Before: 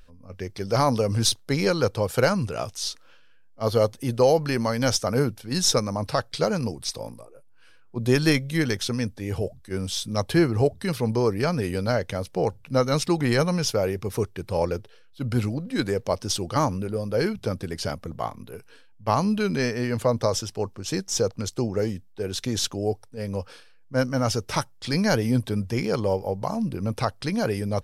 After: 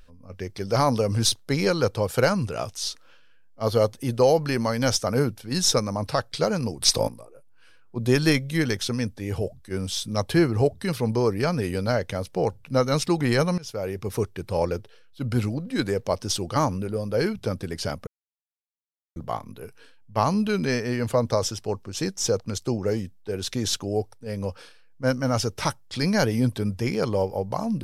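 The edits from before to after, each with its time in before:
6.82–7.08 gain +11 dB
13.58–14.1 fade in, from -20.5 dB
18.07 insert silence 1.09 s

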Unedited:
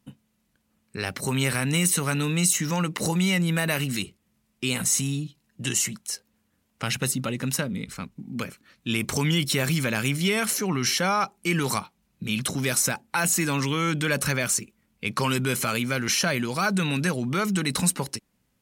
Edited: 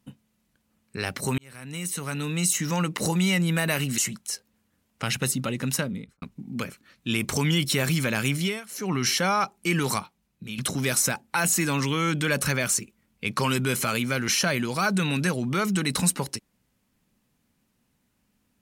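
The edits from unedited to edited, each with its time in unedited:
1.38–2.78 fade in
3.98–5.78 cut
7.63–8.02 studio fade out
10.19–10.73 dip -19.5 dB, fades 0.24 s
11.7–12.38 fade out, to -10 dB

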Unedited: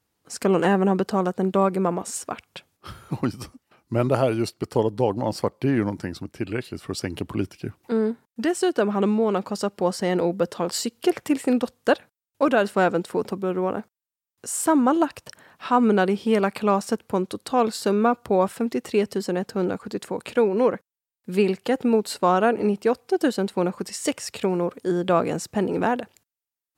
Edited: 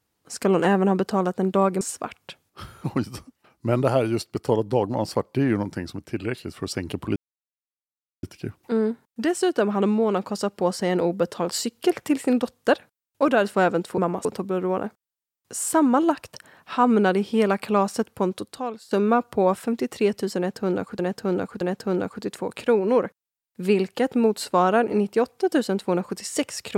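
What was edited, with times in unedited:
1.81–2.08 move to 13.18
7.43 insert silence 1.07 s
17.31–17.84 fade out quadratic, to -17 dB
19.3–19.92 loop, 3 plays

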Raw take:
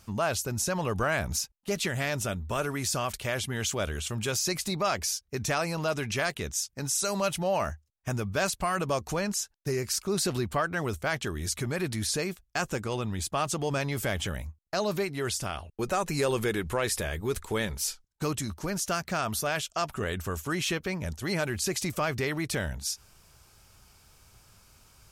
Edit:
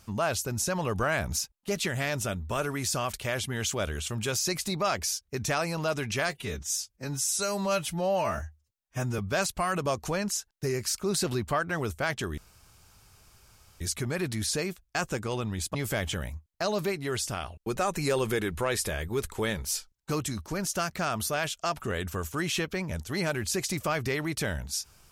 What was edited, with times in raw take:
6.29–8.22 stretch 1.5×
11.41 insert room tone 1.43 s
13.35–13.87 cut

